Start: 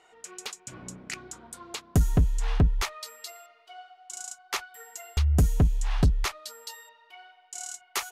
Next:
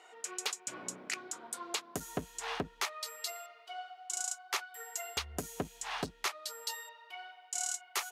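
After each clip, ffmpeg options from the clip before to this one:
-af "highpass=360,alimiter=limit=0.0708:level=0:latency=1:release=456,volume=1.33"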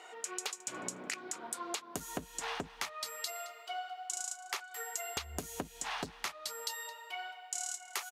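-af "acompressor=threshold=0.00891:ratio=6,aecho=1:1:218|436|654:0.133|0.0413|0.0128,volume=1.88"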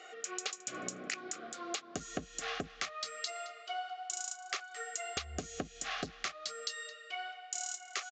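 -af "asuperstop=centerf=930:order=12:qfactor=3.8,aresample=16000,aresample=44100,volume=1.12"

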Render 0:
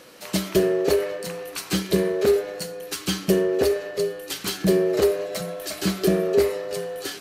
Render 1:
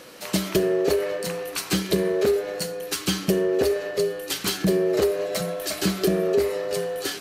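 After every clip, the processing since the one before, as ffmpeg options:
-af "acompressor=threshold=0.0794:ratio=3,volume=1.41"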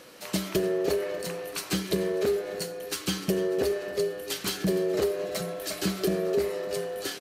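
-af "aecho=1:1:296|592|888|1184|1480:0.141|0.0763|0.0412|0.0222|0.012,volume=0.562"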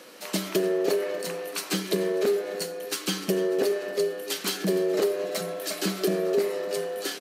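-af "highpass=f=190:w=0.5412,highpass=f=190:w=1.3066,volume=1.26"

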